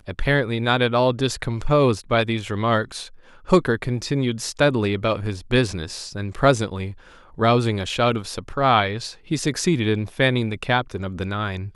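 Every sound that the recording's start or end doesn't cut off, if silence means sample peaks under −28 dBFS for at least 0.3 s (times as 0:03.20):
0:03.49–0:06.91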